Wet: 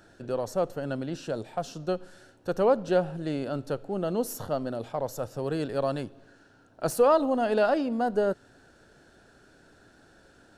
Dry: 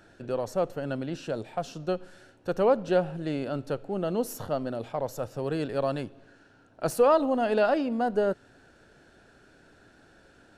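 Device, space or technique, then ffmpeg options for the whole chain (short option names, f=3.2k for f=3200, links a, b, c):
exciter from parts: -filter_complex "[0:a]asplit=2[a][b];[b]highpass=f=2.2k:w=0.5412,highpass=f=2.2k:w=1.3066,asoftclip=type=tanh:threshold=-35.5dB,volume=-7.5dB[c];[a][c]amix=inputs=2:normalize=0"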